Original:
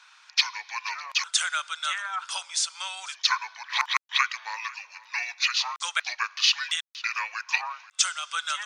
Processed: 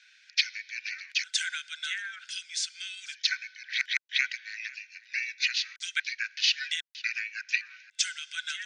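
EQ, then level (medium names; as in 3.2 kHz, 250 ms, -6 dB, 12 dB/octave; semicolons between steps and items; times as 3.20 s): rippled Chebyshev high-pass 1.5 kHz, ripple 3 dB; band-pass filter 2.2 kHz, Q 0.58; 0.0 dB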